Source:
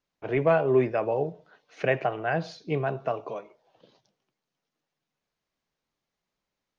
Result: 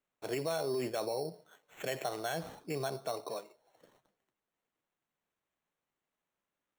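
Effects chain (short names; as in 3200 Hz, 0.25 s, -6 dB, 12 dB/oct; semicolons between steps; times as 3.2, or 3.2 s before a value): limiter -21.5 dBFS, peak gain reduction 10.5 dB; low shelf 130 Hz -11.5 dB; sample-rate reducer 4900 Hz, jitter 0%; gain -4 dB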